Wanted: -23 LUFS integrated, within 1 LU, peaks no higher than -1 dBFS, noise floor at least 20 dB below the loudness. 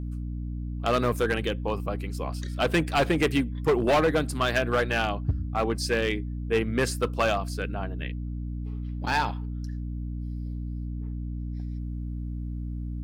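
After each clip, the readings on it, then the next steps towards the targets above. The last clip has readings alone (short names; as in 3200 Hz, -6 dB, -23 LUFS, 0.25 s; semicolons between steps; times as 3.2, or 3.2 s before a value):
clipped 1.3%; flat tops at -17.5 dBFS; hum 60 Hz; harmonics up to 300 Hz; hum level -30 dBFS; loudness -28.5 LUFS; peak -17.5 dBFS; loudness target -23.0 LUFS
-> clip repair -17.5 dBFS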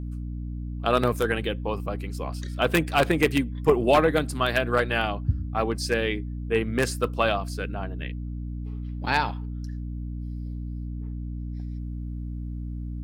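clipped 0.0%; hum 60 Hz; harmonics up to 300 Hz; hum level -30 dBFS
-> notches 60/120/180/240/300 Hz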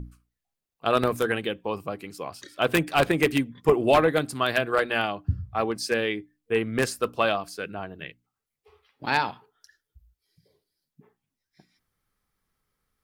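hum none; loudness -25.5 LUFS; peak -7.5 dBFS; loudness target -23.0 LUFS
-> gain +2.5 dB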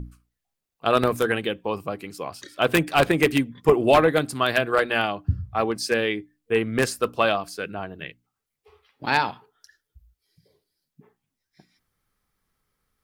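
loudness -23.0 LUFS; peak -5.0 dBFS; noise floor -83 dBFS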